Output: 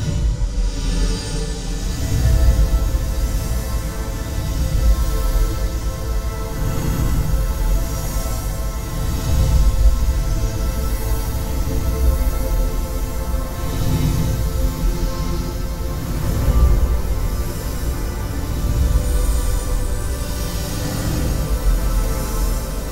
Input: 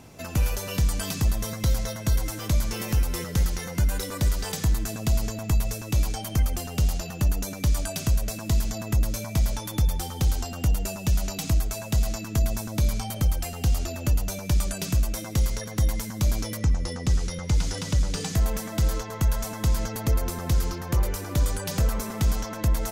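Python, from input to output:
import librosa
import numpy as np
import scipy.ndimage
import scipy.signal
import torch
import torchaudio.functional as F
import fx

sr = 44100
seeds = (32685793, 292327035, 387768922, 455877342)

y = fx.tremolo_shape(x, sr, shape='saw_up', hz=3.9, depth_pct=75)
y = fx.paulstretch(y, sr, seeds[0], factor=5.5, window_s=0.25, from_s=17.96)
y = fx.echo_swing(y, sr, ms=1260, ratio=1.5, feedback_pct=77, wet_db=-9)
y = fx.room_shoebox(y, sr, seeds[1], volume_m3=160.0, walls='furnished', distance_m=2.6)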